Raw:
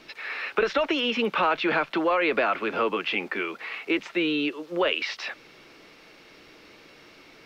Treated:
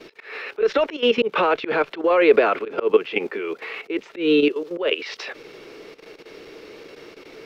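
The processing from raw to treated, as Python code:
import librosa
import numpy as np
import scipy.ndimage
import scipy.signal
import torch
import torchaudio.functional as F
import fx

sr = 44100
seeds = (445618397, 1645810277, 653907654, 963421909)

y = fx.level_steps(x, sr, step_db=13)
y = fx.peak_eq(y, sr, hz=430.0, db=13.0, octaves=0.63)
y = fx.auto_swell(y, sr, attack_ms=159.0)
y = y * 10.0 ** (5.5 / 20.0)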